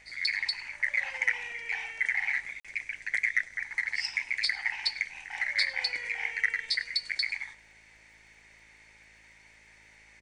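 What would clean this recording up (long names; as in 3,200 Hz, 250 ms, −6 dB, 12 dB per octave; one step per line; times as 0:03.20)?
click removal
hum removal 54.2 Hz, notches 13
repair the gap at 0:02.60, 46 ms
echo removal 101 ms −22.5 dB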